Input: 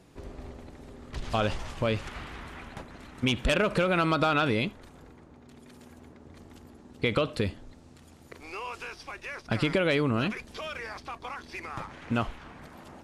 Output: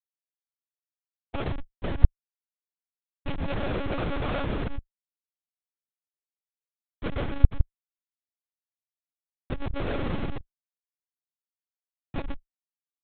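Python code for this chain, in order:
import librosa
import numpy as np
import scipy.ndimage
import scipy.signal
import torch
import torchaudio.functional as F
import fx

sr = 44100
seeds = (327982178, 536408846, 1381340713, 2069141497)

y = fx.rev_gated(x, sr, seeds[0], gate_ms=160, shape='rising', drr_db=1.0)
y = fx.schmitt(y, sr, flips_db=-20.5)
y = fx.lpc_monotone(y, sr, seeds[1], pitch_hz=280.0, order=10)
y = y * librosa.db_to_amplitude(1.5)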